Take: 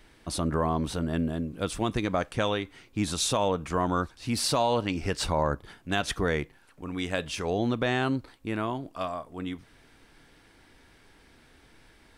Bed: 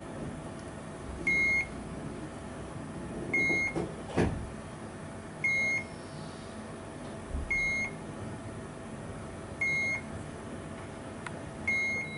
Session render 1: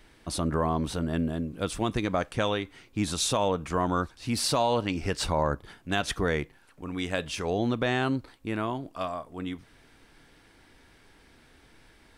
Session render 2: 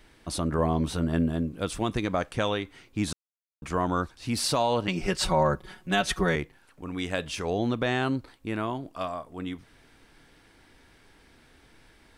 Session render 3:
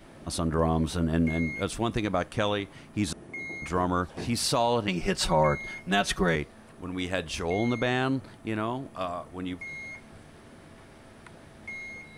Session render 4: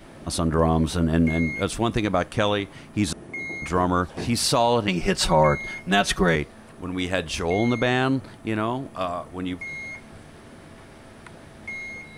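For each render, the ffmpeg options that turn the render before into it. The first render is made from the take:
-af anull
-filter_complex "[0:a]asettb=1/sr,asplit=3[s0][s1][s2];[s0]atrim=end=0.574[s3];[s1]atrim=start=0.57:end=1.49,asetpts=PTS-STARTPTS,afade=t=in:d=0.004:c=qsin,afade=t=out:st=0.916:d=0.004:c=qsin,asplit=2[s4][s5];[s5]adelay=12,volume=0.473[s6];[s4][s6]amix=inputs=2:normalize=0,atrim=end_sample=40572[s7];[s2]atrim=start=1.486[s8];[s3][s7]acrossfade=d=0.004:c1=hsin:c2=qsin[s9];[s9][s8]acrossfade=d=0.004:c1=qsin:c2=hsin,asettb=1/sr,asplit=3[s10][s11][s12];[s10]atrim=end=4.874[s13];[s11]atrim=start=4.87:end=6.36,asetpts=PTS-STARTPTS,afade=t=in:d=0.004:c=qsin,afade=t=out:st=1.486:d=0.004:c=qsin,aecho=1:1:5.4:0.97,atrim=end_sample=65709[s14];[s12]atrim=start=6.356[s15];[s13][s14]acrossfade=d=0.004:c1=hsin:c2=qsin[s16];[s16][s15]acrossfade=d=0.004:c1=qsin:c2=hsin,asplit=3[s17][s18][s19];[s17]atrim=end=3.13,asetpts=PTS-STARTPTS,afade=t=out:st=3.126:d=0.004:c=hsin[s20];[s18]atrim=start=3.13:end=3.62,asetpts=PTS-STARTPTS,volume=0[s21];[s19]atrim=start=3.62,asetpts=PTS-STARTPTS,afade=t=in:d=0.004:c=hsin[s22];[s20][s21][s22]concat=n=3:v=0:a=1"
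-filter_complex "[1:a]volume=0.335[s0];[0:a][s0]amix=inputs=2:normalize=0"
-af "volume=1.78"

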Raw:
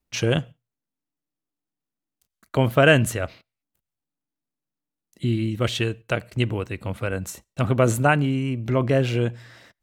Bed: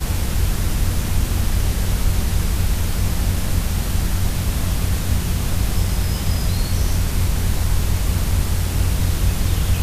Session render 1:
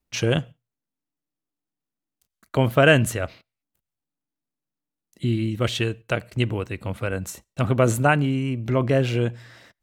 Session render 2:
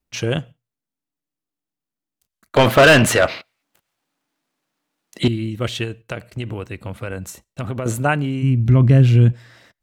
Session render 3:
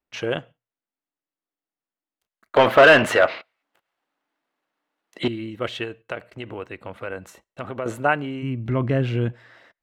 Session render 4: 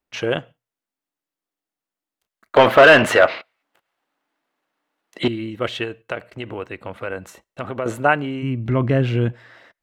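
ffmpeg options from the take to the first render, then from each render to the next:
-af anull
-filter_complex "[0:a]asettb=1/sr,asplit=3[s0][s1][s2];[s0]atrim=end=2.564[s3];[s1]atrim=start=2.56:end=5.28,asetpts=PTS-STARTPTS,afade=t=in:d=0.004:c=qsin,afade=t=out:st=2.716:d=0.004:c=qsin,asplit=2[s4][s5];[s5]highpass=f=720:p=1,volume=25.1,asoftclip=type=tanh:threshold=0.794[s6];[s4][s6]amix=inputs=2:normalize=0,lowpass=f=3000:p=1,volume=0.501[s7];[s2]atrim=start=5.276[s8];[s3][s7]acrossfade=d=0.004:c1=hsin:c2=qsin[s9];[s9][s8]acrossfade=d=0.004:c1=qsin:c2=hsin,asettb=1/sr,asplit=3[s10][s11][s12];[s10]atrim=end=5.844[s13];[s11]atrim=start=5.84:end=7.86,asetpts=PTS-STARTPTS,afade=t=in:d=0.004:c=qsin,afade=t=out:st=2.016:d=0.004:c=qsin,acompressor=threshold=0.0891:ratio=6:attack=3.2:release=140:knee=1:detection=peak[s14];[s12]atrim=start=7.856[s15];[s13][s14]acrossfade=d=0.004:c1=hsin:c2=qsin[s16];[s16][s15]acrossfade=d=0.004:c1=qsin:c2=hsin,asplit=3[s17][s18][s19];[s17]afade=t=out:st=8.42:d=0.02[s20];[s18]asubboost=boost=8.5:cutoff=210,afade=t=in:st=8.42:d=0.02,afade=t=out:st=9.31:d=0.02[s21];[s19]afade=t=in:st=9.31:d=0.02[s22];[s20][s21][s22]amix=inputs=3:normalize=0"
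-af "bass=f=250:g=-14,treble=f=4000:g=-15,bandreject=f=2400:w=26"
-af "volume=1.5,alimiter=limit=0.794:level=0:latency=1"

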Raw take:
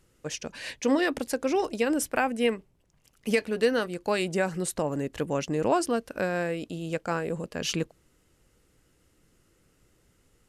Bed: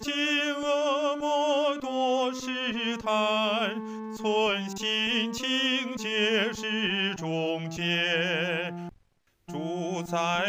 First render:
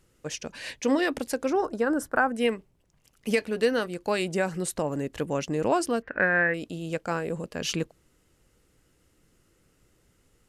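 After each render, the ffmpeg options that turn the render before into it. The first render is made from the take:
-filter_complex "[0:a]asettb=1/sr,asplit=3[s0][s1][s2];[s0]atrim=end=1.504[s3];[s1]atrim=start=1.5:end=2.35,asetpts=PTS-STARTPTS,afade=t=in:d=0.004:c=qsin,afade=t=out:st=0.846:d=0.004:c=qsin,highshelf=f=1900:t=q:w=3:g=-8[s4];[s2]atrim=start=2.346[s5];[s3][s4]acrossfade=d=0.004:c1=hsin:c2=qsin[s6];[s6][s5]acrossfade=d=0.004:c1=qsin:c2=hsin,asettb=1/sr,asplit=3[s7][s8][s9];[s7]atrim=end=6.024[s10];[s8]atrim=start=6.02:end=6.54,asetpts=PTS-STARTPTS,afade=t=in:d=0.004:c=qsin,afade=t=out:st=0.516:d=0.004:c=qsin,lowpass=f=1800:t=q:w=7[s11];[s9]atrim=start=6.536[s12];[s10][s11]acrossfade=d=0.004:c1=hsin:c2=qsin[s13];[s13][s12]acrossfade=d=0.004:c1=qsin:c2=hsin"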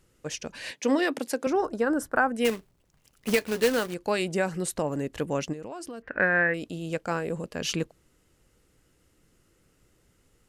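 -filter_complex "[0:a]asettb=1/sr,asplit=3[s0][s1][s2];[s0]atrim=end=0.714[s3];[s1]atrim=start=0.71:end=1.47,asetpts=PTS-STARTPTS,afade=t=in:d=0.004:c=qsin,afade=t=out:st=0.756:d=0.004:c=qsin,highpass=f=170:w=0.5412,highpass=f=170:w=1.3066[s4];[s2]atrim=start=1.466[s5];[s3][s4]acrossfade=d=0.004:c1=hsin:c2=qsin[s6];[s6][s5]acrossfade=d=0.004:c1=qsin:c2=hsin,asplit=3[s7][s8][s9];[s7]afade=t=out:st=2.44:d=0.02[s10];[s8]acrusher=bits=2:mode=log:mix=0:aa=0.000001,afade=t=in:st=2.44:d=0.02,afade=t=out:st=3.93:d=0.02[s11];[s9]afade=t=in:st=3.93:d=0.02[s12];[s10][s11][s12]amix=inputs=3:normalize=0,asplit=3[s13][s14][s15];[s13]afade=t=out:st=5.52:d=0.02[s16];[s14]acompressor=threshold=0.0178:ratio=8:attack=3.2:release=140:knee=1:detection=peak,afade=t=in:st=5.52:d=0.02,afade=t=out:st=6.09:d=0.02[s17];[s15]afade=t=in:st=6.09:d=0.02[s18];[s16][s17][s18]amix=inputs=3:normalize=0"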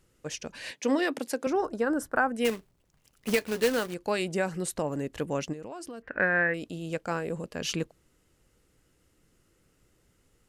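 -af "volume=0.794"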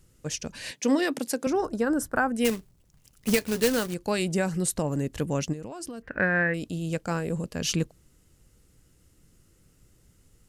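-af "bass=f=250:g=9,treble=f=4000:g=7"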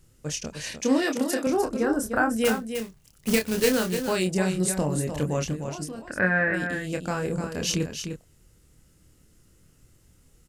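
-filter_complex "[0:a]asplit=2[s0][s1];[s1]adelay=27,volume=0.562[s2];[s0][s2]amix=inputs=2:normalize=0,aecho=1:1:302:0.422"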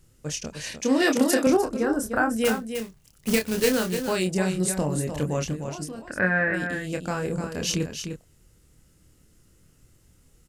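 -filter_complex "[0:a]asettb=1/sr,asplit=3[s0][s1][s2];[s0]atrim=end=1.004[s3];[s1]atrim=start=1:end=1.57,asetpts=PTS-STARTPTS,afade=t=in:d=0.004:c=qsin,afade=t=out:st=0.566:d=0.004:c=qsin,acontrast=32[s4];[s2]atrim=start=1.566[s5];[s3][s4]acrossfade=d=0.004:c1=hsin:c2=qsin[s6];[s6][s5]acrossfade=d=0.004:c1=qsin:c2=hsin"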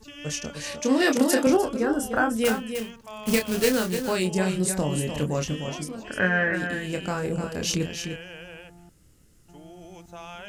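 -filter_complex "[1:a]volume=0.2[s0];[0:a][s0]amix=inputs=2:normalize=0"

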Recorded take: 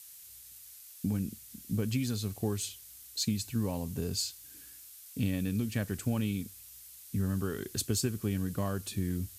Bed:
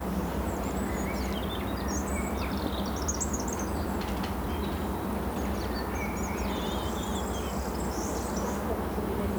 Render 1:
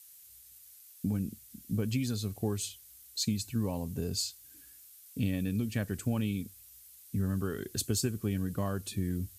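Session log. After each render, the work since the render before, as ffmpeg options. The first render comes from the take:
-af "afftdn=nr=6:nf=-52"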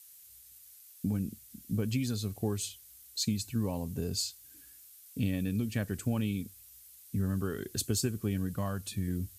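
-filter_complex "[0:a]asettb=1/sr,asplit=3[s0][s1][s2];[s0]atrim=end=8.494[s3];[s1]atrim=start=8.49:end=9.08,asetpts=PTS-STARTPTS,afade=t=in:d=0.004:c=qsin,afade=t=out:st=0.586:d=0.004:c=qsin,equalizer=f=360:t=o:w=0.77:g=-7.5[s4];[s2]atrim=start=9.076[s5];[s3][s4]acrossfade=d=0.004:c1=hsin:c2=qsin[s6];[s6][s5]acrossfade=d=0.004:c1=qsin:c2=hsin"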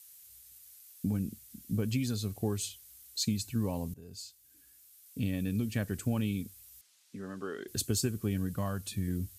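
-filter_complex "[0:a]asettb=1/sr,asplit=3[s0][s1][s2];[s0]atrim=end=6.814[s3];[s1]atrim=start=6.81:end=7.68,asetpts=PTS-STARTPTS,afade=t=in:d=0.004:c=qsin,afade=t=out:st=0.866:d=0.004:c=qsin,highpass=340,lowpass=5600[s4];[s2]atrim=start=7.676[s5];[s3][s4]acrossfade=d=0.004:c1=hsin:c2=qsin[s6];[s6][s5]acrossfade=d=0.004:c1=qsin:c2=hsin,asplit=2[s7][s8];[s7]atrim=end=3.94,asetpts=PTS-STARTPTS,afade=t=out:st=3.936:d=0.004:c=hsin:silence=0.112202[s9];[s8]atrim=start=3.94,asetpts=PTS-STARTPTS,afade=t=in:d=1.64:silence=0.112202[s10];[s9][s10]concat=n=2:v=0:a=1"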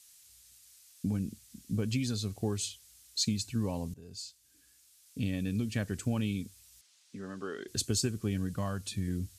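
-af "lowpass=6200,aemphasis=mode=production:type=cd"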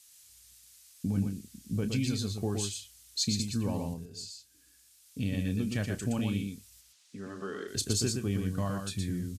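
-filter_complex "[0:a]asplit=2[s0][s1];[s1]adelay=30,volume=0.237[s2];[s0][s2]amix=inputs=2:normalize=0,asplit=2[s3][s4];[s4]aecho=0:1:118:0.596[s5];[s3][s5]amix=inputs=2:normalize=0"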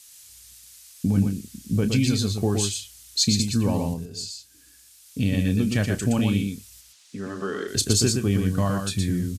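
-af "volume=2.82"

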